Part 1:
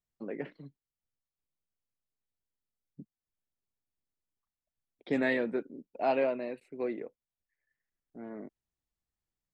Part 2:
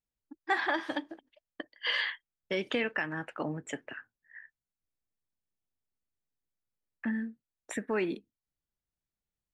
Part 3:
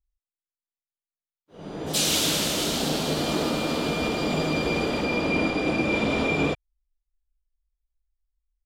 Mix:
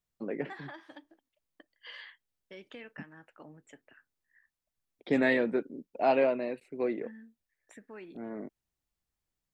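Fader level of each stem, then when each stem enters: +3.0 dB, −16.5 dB, muted; 0.00 s, 0.00 s, muted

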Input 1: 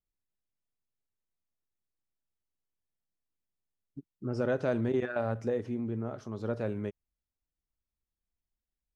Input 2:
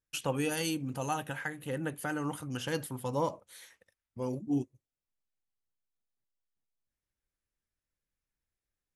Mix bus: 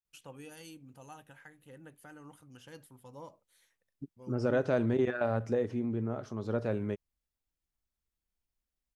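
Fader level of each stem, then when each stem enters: +1.0, −17.0 decibels; 0.05, 0.00 seconds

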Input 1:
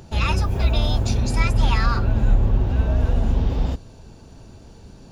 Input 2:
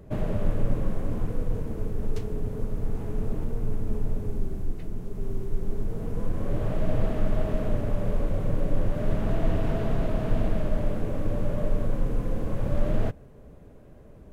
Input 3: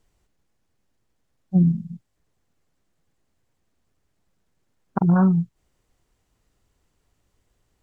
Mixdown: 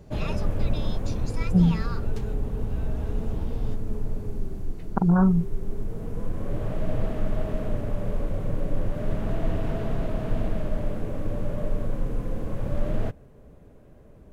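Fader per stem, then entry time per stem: −13.0, −1.5, −2.0 decibels; 0.00, 0.00, 0.00 seconds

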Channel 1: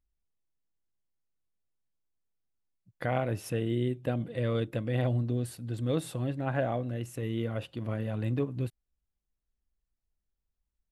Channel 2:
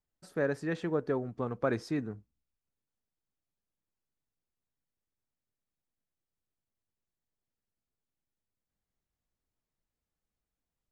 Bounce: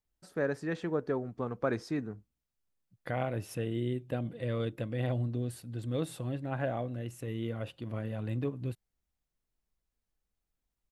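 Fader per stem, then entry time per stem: −3.5, −1.0 decibels; 0.05, 0.00 seconds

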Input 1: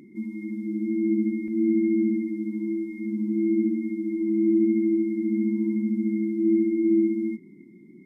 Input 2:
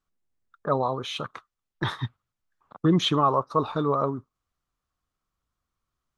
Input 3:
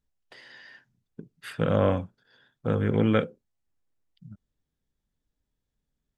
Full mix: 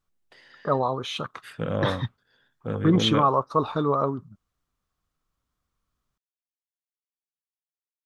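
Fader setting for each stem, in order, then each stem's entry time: muted, +1.0 dB, −4.0 dB; muted, 0.00 s, 0.00 s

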